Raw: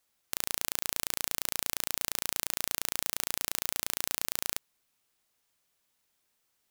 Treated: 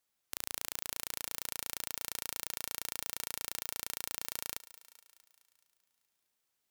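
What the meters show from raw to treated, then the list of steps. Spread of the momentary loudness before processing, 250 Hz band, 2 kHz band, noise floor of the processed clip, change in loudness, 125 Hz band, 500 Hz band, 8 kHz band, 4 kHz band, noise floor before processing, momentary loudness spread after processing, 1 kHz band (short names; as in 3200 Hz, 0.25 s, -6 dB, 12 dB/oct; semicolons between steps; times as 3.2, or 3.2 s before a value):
2 LU, -7.0 dB, -6.5 dB, -83 dBFS, -6.5 dB, -7.5 dB, -6.5 dB, -6.5 dB, -6.5 dB, -77 dBFS, 4 LU, -6.5 dB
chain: low shelf 66 Hz -4.5 dB; on a send: thinning echo 0.212 s, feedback 59%, high-pass 350 Hz, level -16.5 dB; on the sum: gain -6.5 dB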